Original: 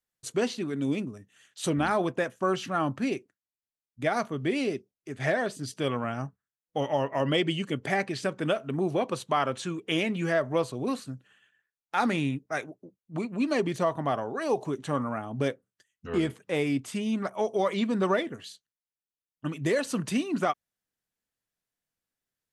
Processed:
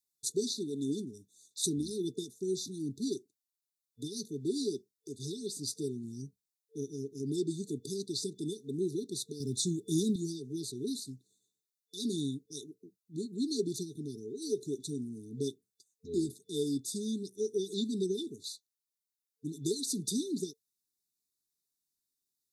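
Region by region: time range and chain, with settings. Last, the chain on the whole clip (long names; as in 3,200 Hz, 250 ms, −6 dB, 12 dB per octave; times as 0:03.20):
0:09.40–0:10.16: floating-point word with a short mantissa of 8 bits + bass and treble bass +12 dB, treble +5 dB
whole clip: low-shelf EQ 290 Hz −10.5 dB; brick-wall band-stop 450–3,500 Hz; high-shelf EQ 3,600 Hz +5.5 dB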